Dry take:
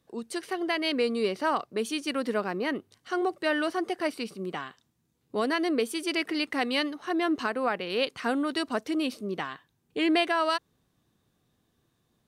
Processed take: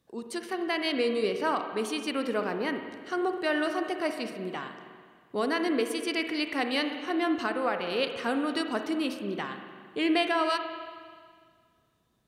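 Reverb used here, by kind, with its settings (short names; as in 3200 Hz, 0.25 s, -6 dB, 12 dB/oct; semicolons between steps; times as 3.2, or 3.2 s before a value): spring tank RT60 1.9 s, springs 40/59 ms, chirp 50 ms, DRR 6 dB; gain -1.5 dB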